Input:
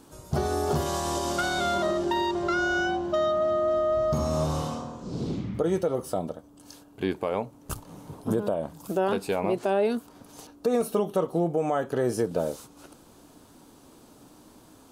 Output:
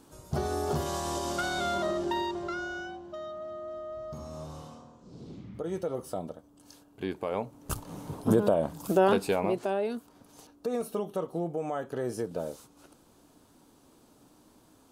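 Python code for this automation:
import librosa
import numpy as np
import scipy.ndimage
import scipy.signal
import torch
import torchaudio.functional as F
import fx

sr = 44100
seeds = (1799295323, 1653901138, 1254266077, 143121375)

y = fx.gain(x, sr, db=fx.line((2.15, -4.0), (3.01, -15.0), (5.26, -15.0), (5.89, -6.0), (7.1, -6.0), (7.94, 3.0), (9.09, 3.0), (9.87, -7.0)))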